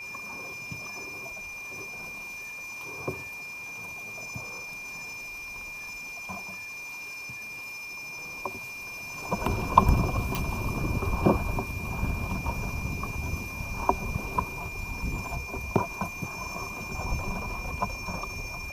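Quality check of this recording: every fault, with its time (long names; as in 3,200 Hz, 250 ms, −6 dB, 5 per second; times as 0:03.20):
whistle 2,400 Hz −37 dBFS
0:10.35: click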